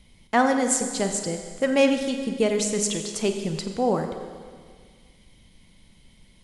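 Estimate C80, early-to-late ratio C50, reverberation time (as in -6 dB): 7.5 dB, 6.5 dB, 1.8 s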